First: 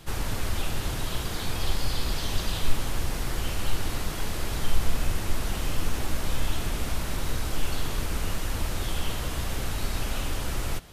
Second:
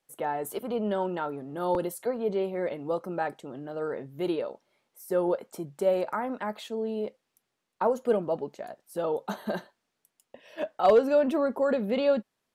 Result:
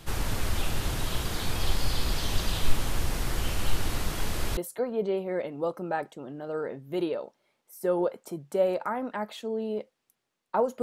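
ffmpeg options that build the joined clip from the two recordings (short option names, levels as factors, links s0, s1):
-filter_complex "[0:a]apad=whole_dur=10.82,atrim=end=10.82,atrim=end=4.572[s0];[1:a]atrim=start=1.838:end=8.09[s1];[s0][s1]acrossfade=d=0.004:c1=hsin:c2=hsin"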